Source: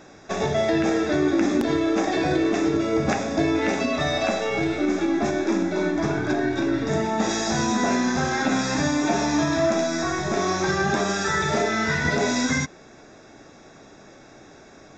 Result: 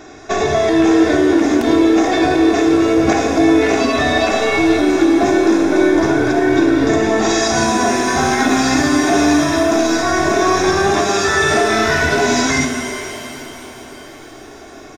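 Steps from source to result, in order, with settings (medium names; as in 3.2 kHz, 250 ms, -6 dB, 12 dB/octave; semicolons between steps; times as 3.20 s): comb 2.8 ms, depth 62%; peak limiter -14 dBFS, peak gain reduction 6.5 dB; pitch-shifted reverb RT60 3.4 s, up +7 st, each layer -8 dB, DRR 5.5 dB; trim +7.5 dB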